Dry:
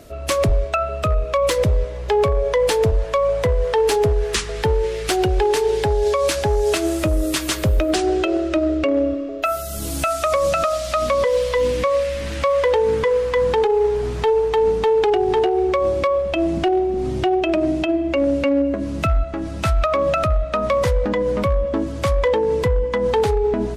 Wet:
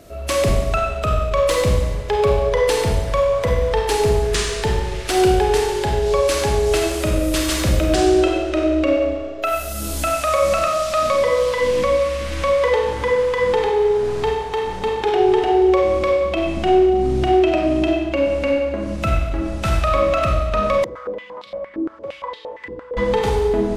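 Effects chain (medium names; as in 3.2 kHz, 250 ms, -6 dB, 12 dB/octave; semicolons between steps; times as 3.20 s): Schroeder reverb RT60 1.2 s, combs from 31 ms, DRR -1 dB; 20.84–22.97 s: step-sequenced band-pass 8.7 Hz 330–3900 Hz; trim -2 dB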